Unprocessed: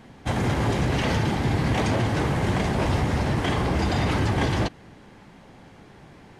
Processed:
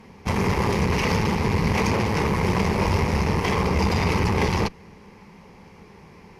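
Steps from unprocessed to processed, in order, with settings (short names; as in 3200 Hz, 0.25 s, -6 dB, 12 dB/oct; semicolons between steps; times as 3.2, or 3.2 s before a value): added harmonics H 4 -16 dB, 8 -25 dB, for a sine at -12 dBFS; ripple EQ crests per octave 0.83, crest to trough 9 dB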